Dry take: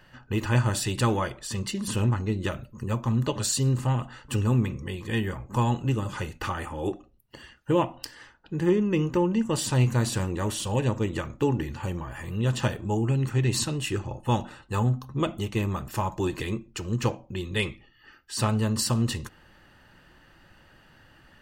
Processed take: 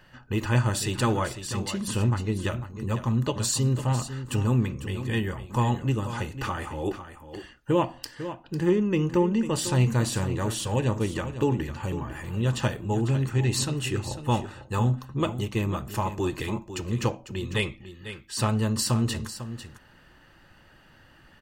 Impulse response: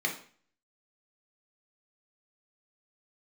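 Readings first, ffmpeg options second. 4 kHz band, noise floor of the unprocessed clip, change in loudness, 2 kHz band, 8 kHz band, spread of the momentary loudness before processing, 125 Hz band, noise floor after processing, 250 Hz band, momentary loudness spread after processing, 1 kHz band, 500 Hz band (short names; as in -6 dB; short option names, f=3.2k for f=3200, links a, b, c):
+0.5 dB, -57 dBFS, 0.0 dB, +0.5 dB, +0.5 dB, 9 LU, +0.5 dB, -55 dBFS, +0.5 dB, 10 LU, +0.5 dB, +0.5 dB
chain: -af "aecho=1:1:499:0.266"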